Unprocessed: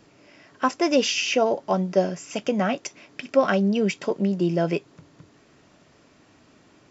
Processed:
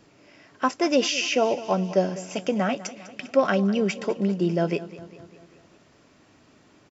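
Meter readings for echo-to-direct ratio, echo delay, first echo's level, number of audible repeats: -14.5 dB, 200 ms, -16.5 dB, 4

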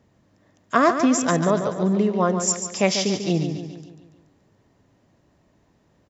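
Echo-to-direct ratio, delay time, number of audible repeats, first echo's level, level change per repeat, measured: -7.0 dB, 143 ms, 5, -8.5 dB, -6.0 dB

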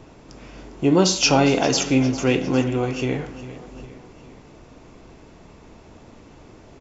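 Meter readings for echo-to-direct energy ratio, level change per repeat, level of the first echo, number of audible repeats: -14.5 dB, -5.0 dB, -16.0 dB, 3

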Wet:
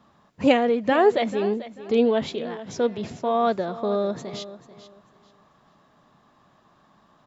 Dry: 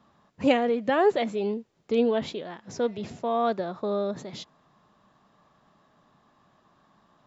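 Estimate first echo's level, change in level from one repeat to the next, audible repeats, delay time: -15.0 dB, -12.0 dB, 2, 440 ms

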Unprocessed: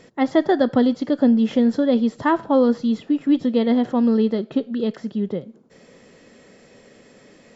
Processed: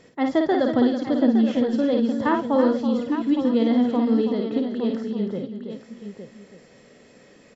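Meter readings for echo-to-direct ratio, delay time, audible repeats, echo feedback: -2.0 dB, 53 ms, 5, no regular repeats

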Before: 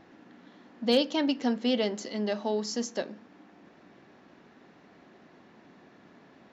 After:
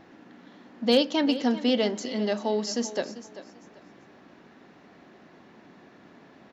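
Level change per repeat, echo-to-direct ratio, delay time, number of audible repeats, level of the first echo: -12.0 dB, -14.0 dB, 391 ms, 2, -14.5 dB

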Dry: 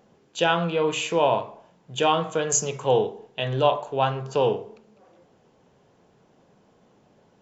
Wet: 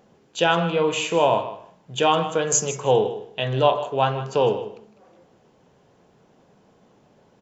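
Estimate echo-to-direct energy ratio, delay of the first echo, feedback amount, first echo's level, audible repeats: -14.0 dB, 156 ms, 15%, -14.0 dB, 2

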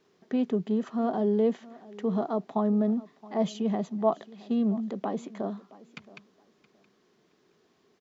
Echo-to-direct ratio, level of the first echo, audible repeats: -20.5 dB, -20.5 dB, 2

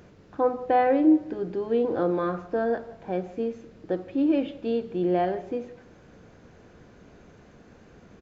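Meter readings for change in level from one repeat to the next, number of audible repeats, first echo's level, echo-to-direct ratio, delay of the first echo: -9.0 dB, 2, -21.0 dB, -20.5 dB, 167 ms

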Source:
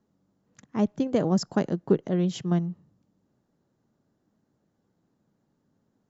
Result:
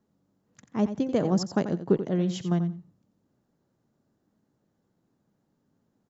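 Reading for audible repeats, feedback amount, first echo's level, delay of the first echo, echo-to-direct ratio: 2, 16%, -11.0 dB, 88 ms, -11.0 dB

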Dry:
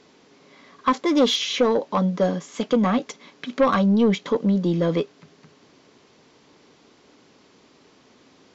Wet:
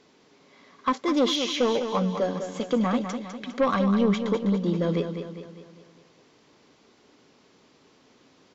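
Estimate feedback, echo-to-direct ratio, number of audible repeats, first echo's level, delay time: 50%, -7.0 dB, 5, -8.0 dB, 202 ms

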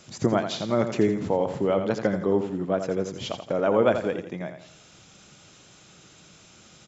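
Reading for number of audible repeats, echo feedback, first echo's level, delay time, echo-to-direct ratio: 4, 39%, -8.5 dB, 84 ms, -8.0 dB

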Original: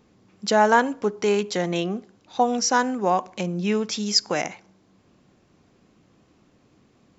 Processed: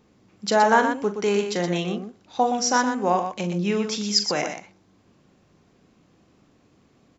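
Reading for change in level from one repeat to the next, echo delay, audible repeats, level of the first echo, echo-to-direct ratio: no regular repeats, 40 ms, 2, -9.5 dB, -5.0 dB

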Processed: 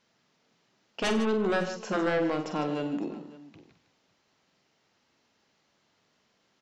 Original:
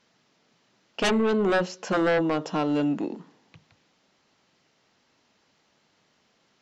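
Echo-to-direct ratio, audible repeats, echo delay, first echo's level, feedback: -5.5 dB, 4, 46 ms, -8.0 dB, no regular repeats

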